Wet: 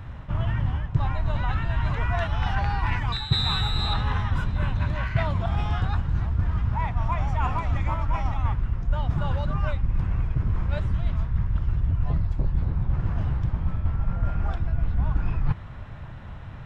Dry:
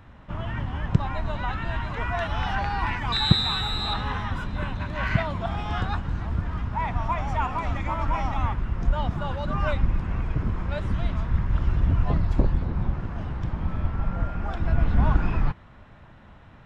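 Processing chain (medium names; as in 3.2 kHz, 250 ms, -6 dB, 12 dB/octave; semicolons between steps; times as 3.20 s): resonant low shelf 170 Hz +6 dB, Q 1.5; reverse; compression 6:1, threshold -26 dBFS, peak gain reduction 19.5 dB; reverse; trim +5.5 dB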